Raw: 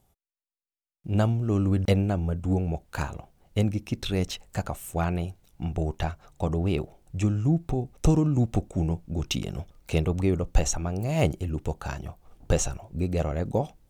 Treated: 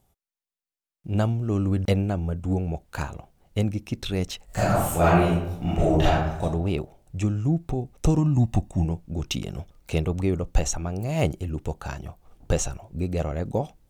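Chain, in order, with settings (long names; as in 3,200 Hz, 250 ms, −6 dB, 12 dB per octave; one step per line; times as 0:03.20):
0:04.45–0:06.42: thrown reverb, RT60 0.84 s, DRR −11 dB
0:08.18–0:08.85: comb filter 1.1 ms, depth 67%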